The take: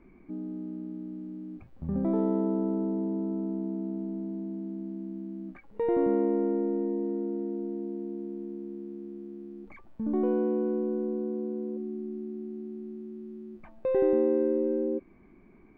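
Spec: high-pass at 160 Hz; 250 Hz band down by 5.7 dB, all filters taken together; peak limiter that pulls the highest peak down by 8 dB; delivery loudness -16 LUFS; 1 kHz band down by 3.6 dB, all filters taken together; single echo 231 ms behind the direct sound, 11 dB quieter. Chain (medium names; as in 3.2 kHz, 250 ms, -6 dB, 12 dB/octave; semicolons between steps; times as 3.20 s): high-pass 160 Hz; peaking EQ 250 Hz -7 dB; peaking EQ 1 kHz -4.5 dB; peak limiter -26 dBFS; delay 231 ms -11 dB; trim +21.5 dB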